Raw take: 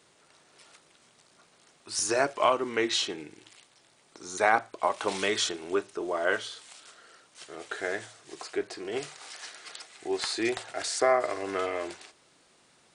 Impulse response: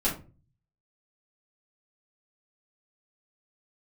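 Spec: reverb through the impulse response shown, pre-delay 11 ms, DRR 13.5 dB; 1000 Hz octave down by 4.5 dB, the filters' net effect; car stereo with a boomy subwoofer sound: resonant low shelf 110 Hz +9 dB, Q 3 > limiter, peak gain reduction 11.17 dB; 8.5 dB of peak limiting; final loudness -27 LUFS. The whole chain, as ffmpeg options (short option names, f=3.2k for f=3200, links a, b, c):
-filter_complex "[0:a]equalizer=f=1k:t=o:g=-6,alimiter=limit=-19dB:level=0:latency=1,asplit=2[a][b];[1:a]atrim=start_sample=2205,adelay=11[c];[b][c]afir=irnorm=-1:irlink=0,volume=-22.5dB[d];[a][d]amix=inputs=2:normalize=0,lowshelf=f=110:t=q:w=3:g=9,volume=13dB,alimiter=limit=-16.5dB:level=0:latency=1"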